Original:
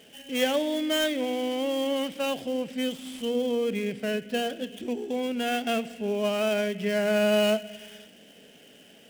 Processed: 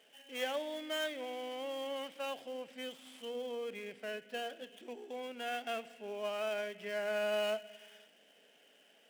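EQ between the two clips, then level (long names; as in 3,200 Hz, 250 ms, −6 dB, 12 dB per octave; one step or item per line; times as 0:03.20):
high-pass filter 920 Hz 12 dB per octave
spectral tilt −4 dB per octave
high-shelf EQ 8,000 Hz +8 dB
−5.5 dB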